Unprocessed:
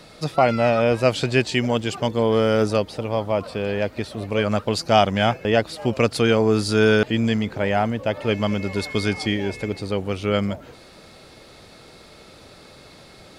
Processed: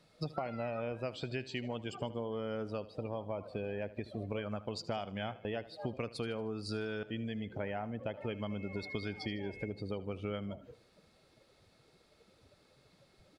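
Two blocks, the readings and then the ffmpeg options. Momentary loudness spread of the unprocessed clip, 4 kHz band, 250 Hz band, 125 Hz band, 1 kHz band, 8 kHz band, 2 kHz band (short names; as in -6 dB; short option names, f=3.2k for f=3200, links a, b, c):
8 LU, -19.0 dB, -17.5 dB, -17.0 dB, -20.0 dB, -23.0 dB, -19.5 dB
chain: -af "afftdn=nr=18:nf=-32,acompressor=threshold=-31dB:ratio=16,aecho=1:1:77|154|231|308:0.141|0.0607|0.0261|0.0112,volume=-3.5dB"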